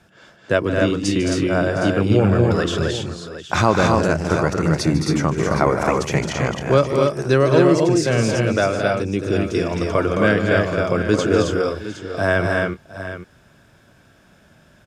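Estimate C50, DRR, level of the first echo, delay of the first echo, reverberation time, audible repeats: no reverb, no reverb, -13.5 dB, 150 ms, no reverb, 5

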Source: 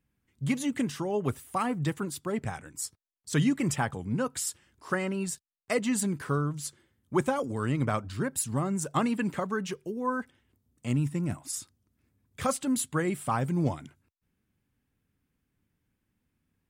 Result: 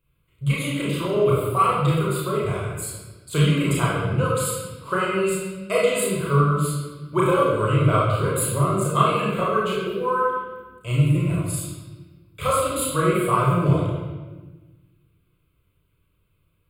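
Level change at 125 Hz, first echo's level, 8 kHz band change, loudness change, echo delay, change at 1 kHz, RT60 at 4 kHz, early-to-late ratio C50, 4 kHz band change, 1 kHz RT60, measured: +11.0 dB, no echo, +4.5 dB, +8.5 dB, no echo, +11.0 dB, 1.1 s, -1.0 dB, +9.5 dB, 1.2 s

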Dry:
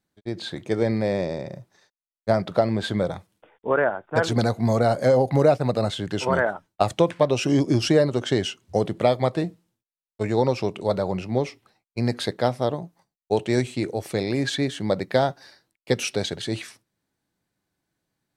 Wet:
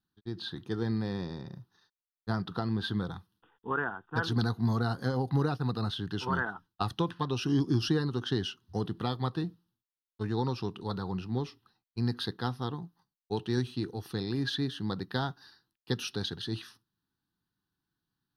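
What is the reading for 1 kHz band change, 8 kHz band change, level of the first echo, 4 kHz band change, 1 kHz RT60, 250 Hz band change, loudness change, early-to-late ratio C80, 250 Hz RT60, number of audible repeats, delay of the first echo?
-9.5 dB, -13.0 dB, no echo, -5.5 dB, no reverb, -7.0 dB, -9.0 dB, no reverb, no reverb, no echo, no echo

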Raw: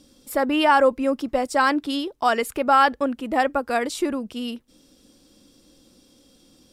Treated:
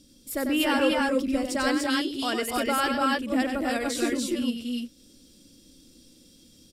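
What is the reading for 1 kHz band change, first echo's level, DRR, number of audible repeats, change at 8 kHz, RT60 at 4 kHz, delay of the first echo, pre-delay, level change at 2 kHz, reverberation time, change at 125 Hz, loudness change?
-9.0 dB, -6.5 dB, no reverb, 4, +3.0 dB, no reverb, 95 ms, no reverb, -3.5 dB, no reverb, no reading, -4.5 dB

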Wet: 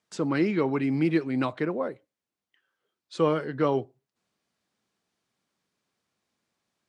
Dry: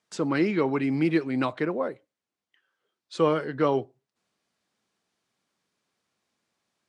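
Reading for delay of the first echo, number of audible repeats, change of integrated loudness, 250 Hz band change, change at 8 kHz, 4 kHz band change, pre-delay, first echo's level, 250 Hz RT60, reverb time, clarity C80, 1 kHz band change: no echo, no echo, -1.0 dB, -0.5 dB, no reading, -2.0 dB, no reverb, no echo, no reverb, no reverb, no reverb, -2.0 dB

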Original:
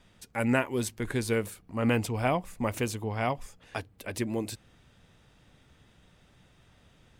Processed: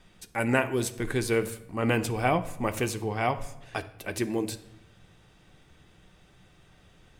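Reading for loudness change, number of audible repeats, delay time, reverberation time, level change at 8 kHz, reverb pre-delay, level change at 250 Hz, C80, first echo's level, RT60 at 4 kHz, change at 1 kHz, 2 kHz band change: +2.0 dB, no echo, no echo, 0.90 s, +2.5 dB, 3 ms, +0.5 dB, 17.5 dB, no echo, 0.60 s, +3.0 dB, +3.0 dB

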